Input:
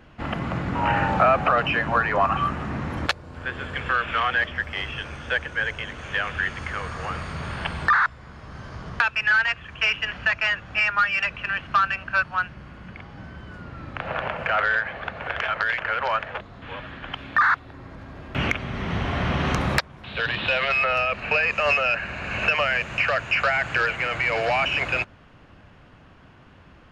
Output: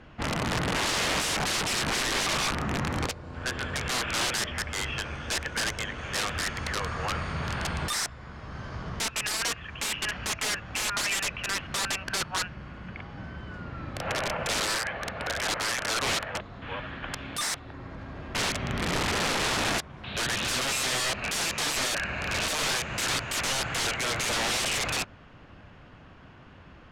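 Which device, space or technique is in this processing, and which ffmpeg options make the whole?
overflowing digital effects unit: -af "aeval=exprs='(mod(11.9*val(0)+1,2)-1)/11.9':channel_layout=same,lowpass=8100"

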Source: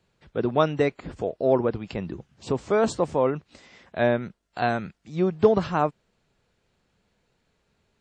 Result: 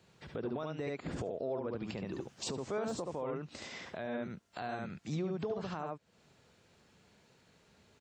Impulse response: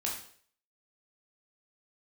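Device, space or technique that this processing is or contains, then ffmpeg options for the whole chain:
broadcast voice chain: -filter_complex "[0:a]asettb=1/sr,asplit=3[link_01][link_02][link_03];[link_01]atrim=end=2.044[link_04];[link_02]atrim=start=2.04:end=2.5,asetpts=PTS-STARTPTS,afade=type=in:duration=0.004:curve=qsin,afade=type=out:start_time=0.456:duration=0.004:curve=qsin,bass=frequency=250:gain=-10,treble=frequency=4000:gain=4[link_05];[link_03]atrim=start=2.496[link_06];[link_04][link_05]acrossfade=duration=0.004:curve1=hsin:curve2=qsin[link_07];[link_07][link_06]acrossfade=duration=0.004:curve1=qsin:curve2=hsin,highpass=78,aecho=1:1:71:0.596,deesser=0.85,acompressor=threshold=-36dB:ratio=3,equalizer=frequency=6000:width_type=o:width=0.85:gain=3,alimiter=level_in=8.5dB:limit=-24dB:level=0:latency=1:release=144,volume=-8.5dB,volume=4dB"

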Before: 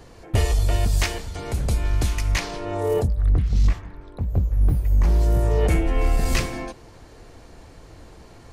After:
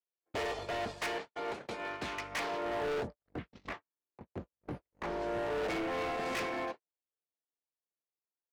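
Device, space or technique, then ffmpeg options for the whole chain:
walkie-talkie: -filter_complex "[0:a]asettb=1/sr,asplit=3[link_01][link_02][link_03];[link_01]atrim=end=1.274[link_04];[link_02]atrim=start=1.27:end=2.02,asetpts=PTS-STARTPTS,afade=type=in:duration=0.004:curve=qsin,afade=type=out:start_time=0.746:duration=0.004:curve=qsin,highpass=frequency=210:poles=1[link_05];[link_03]atrim=start=2.016[link_06];[link_04][link_05]acrossfade=duration=0.004:curve1=hsin:curve2=qsin[link_07];[link_07][link_06]acrossfade=duration=0.004:curve1=qsin:curve2=hsin,highpass=410,lowpass=2500,asoftclip=type=hard:threshold=-32.5dB,agate=range=-56dB:threshold=-40dB:ratio=16:detection=peak"

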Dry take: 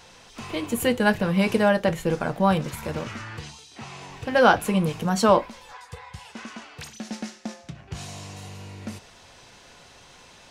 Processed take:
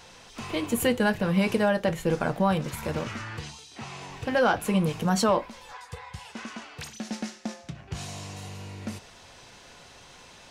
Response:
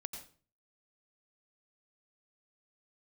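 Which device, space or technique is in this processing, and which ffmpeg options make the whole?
soft clipper into limiter: -af "asoftclip=type=tanh:threshold=-5.5dB,alimiter=limit=-13dB:level=0:latency=1:release=329"

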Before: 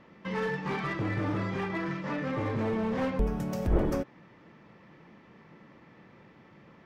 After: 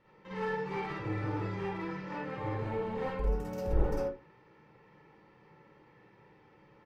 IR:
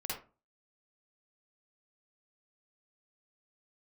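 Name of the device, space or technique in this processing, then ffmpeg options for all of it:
microphone above a desk: -filter_complex "[0:a]aecho=1:1:2.2:0.52[link_01];[1:a]atrim=start_sample=2205[link_02];[link_01][link_02]afir=irnorm=-1:irlink=0,asettb=1/sr,asplit=3[link_03][link_04][link_05];[link_03]atrim=end=2.184[link_06];[link_04]atrim=start=2.18:end=3.24,asetpts=PTS-STARTPTS,afade=type=in:duration=0.004:curve=qsin,afade=type=out:start_time=1.056:duration=0.004:curve=qsin,equalizer=frequency=5600:width=4:gain=-6[link_07];[link_05]atrim=start=3.236[link_08];[link_06][link_07]acrossfade=duration=0.004:curve1=hsin:curve2=qsin[link_09];[link_09][link_08]acrossfade=duration=0.004:curve1=qsin:curve2=hsin,volume=-7.5dB"

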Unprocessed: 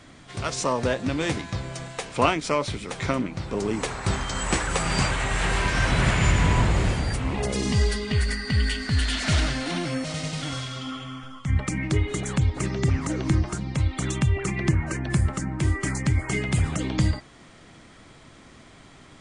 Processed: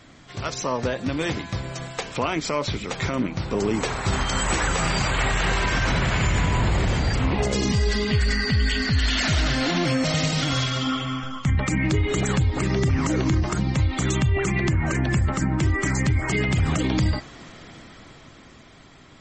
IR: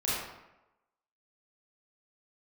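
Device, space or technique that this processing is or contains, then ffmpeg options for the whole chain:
low-bitrate web radio: -af "dynaudnorm=framelen=310:gausssize=11:maxgain=13dB,alimiter=limit=-13dB:level=0:latency=1:release=55" -ar 44100 -c:a libmp3lame -b:a 32k

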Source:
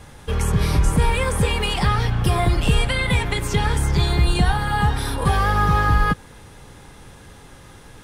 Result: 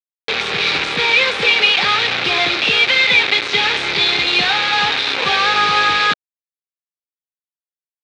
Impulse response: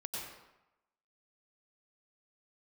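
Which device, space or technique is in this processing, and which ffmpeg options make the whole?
hand-held game console: -af "acrusher=bits=3:mix=0:aa=0.000001,highpass=480,equalizer=frequency=650:width_type=q:width=4:gain=-6,equalizer=frequency=1000:width_type=q:width=4:gain=-7,equalizer=frequency=2400:width_type=q:width=4:gain=9,equalizer=frequency=3800:width_type=q:width=4:gain=9,lowpass=frequency=4600:width=0.5412,lowpass=frequency=4600:width=1.3066,volume=6.5dB"

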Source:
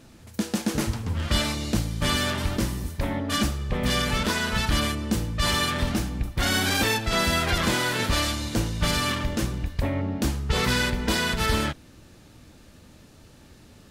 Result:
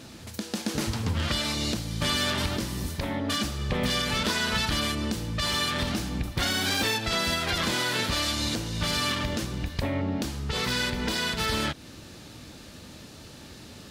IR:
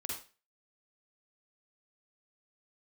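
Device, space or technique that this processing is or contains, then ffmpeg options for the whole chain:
broadcast voice chain: -af "highpass=frequency=87:poles=1,deesser=0.45,acompressor=threshold=-30dB:ratio=4,equalizer=frequency=4200:width_type=o:width=1.2:gain=5,alimiter=limit=-21dB:level=0:latency=1:release=495,volume=6dB"

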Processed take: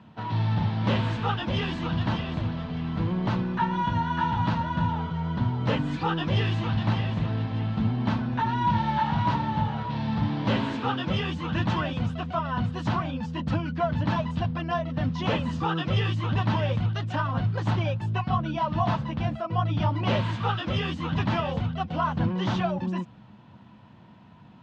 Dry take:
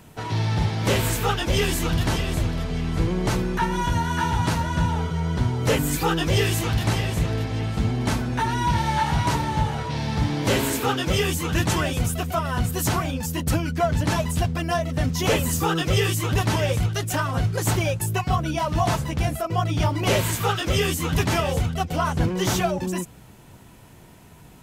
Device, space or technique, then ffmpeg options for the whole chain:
guitar cabinet: -af "highpass=98,equalizer=frequency=110:width_type=q:width=4:gain=5,equalizer=frequency=210:width_type=q:width=4:gain=9,equalizer=frequency=410:width_type=q:width=4:gain=-8,equalizer=frequency=1000:width_type=q:width=4:gain=5,equalizer=frequency=2200:width_type=q:width=4:gain=-5,lowpass=frequency=3800:width=0.5412,lowpass=frequency=3800:width=1.3066,volume=-4.5dB"

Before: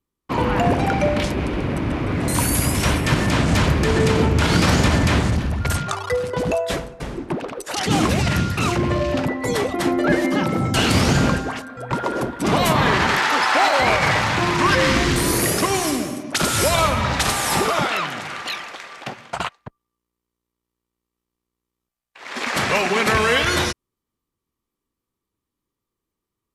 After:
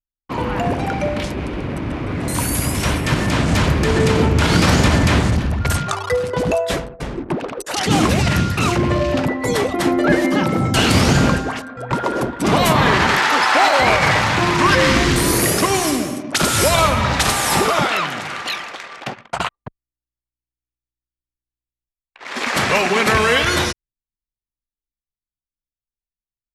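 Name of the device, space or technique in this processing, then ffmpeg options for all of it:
voice memo with heavy noise removal: -af "anlmdn=0.398,dynaudnorm=framelen=610:gausssize=11:maxgain=11.5dB,volume=-2dB"

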